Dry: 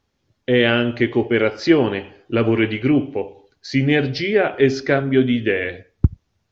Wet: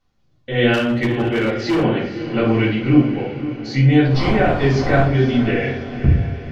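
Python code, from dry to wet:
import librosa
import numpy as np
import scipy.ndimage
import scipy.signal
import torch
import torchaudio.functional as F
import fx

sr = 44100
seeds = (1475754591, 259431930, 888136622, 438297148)

y = fx.dmg_wind(x, sr, seeds[0], corner_hz=610.0, level_db=-25.0, at=(3.87, 5.02), fade=0.02)
y = fx.echo_diffused(y, sr, ms=514, feedback_pct=53, wet_db=-12)
y = fx.room_shoebox(y, sr, seeds[1], volume_m3=420.0, walls='furnished', distance_m=7.1)
y = fx.clip_hard(y, sr, threshold_db=-4.0, at=(0.73, 1.83), fade=0.02)
y = y * librosa.db_to_amplitude(-10.0)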